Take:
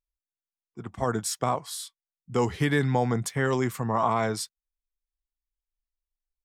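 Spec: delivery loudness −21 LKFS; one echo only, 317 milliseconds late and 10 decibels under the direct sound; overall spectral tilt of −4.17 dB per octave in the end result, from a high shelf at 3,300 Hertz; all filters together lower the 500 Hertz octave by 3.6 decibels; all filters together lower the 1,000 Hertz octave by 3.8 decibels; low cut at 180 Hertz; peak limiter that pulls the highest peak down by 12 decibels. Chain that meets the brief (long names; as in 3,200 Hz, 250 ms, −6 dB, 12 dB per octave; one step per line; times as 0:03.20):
high-pass filter 180 Hz
parametric band 500 Hz −3.5 dB
parametric band 1,000 Hz −4.5 dB
high-shelf EQ 3,300 Hz +8.5 dB
brickwall limiter −22 dBFS
single-tap delay 317 ms −10 dB
level +11.5 dB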